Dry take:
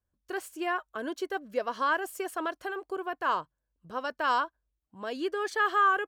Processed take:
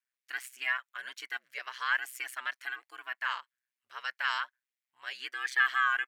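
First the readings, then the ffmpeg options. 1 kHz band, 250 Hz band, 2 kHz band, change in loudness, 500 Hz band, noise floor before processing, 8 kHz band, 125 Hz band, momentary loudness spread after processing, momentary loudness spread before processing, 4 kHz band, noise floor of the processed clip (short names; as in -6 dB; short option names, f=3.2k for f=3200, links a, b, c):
-8.0 dB, under -25 dB, +2.5 dB, -2.5 dB, -24.5 dB, -84 dBFS, -1.0 dB, n/a, 14 LU, 11 LU, +2.5 dB, under -85 dBFS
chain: -af "highpass=f=2k:t=q:w=3.4,aeval=exprs='val(0)*sin(2*PI*64*n/s)':c=same,volume=1.5dB"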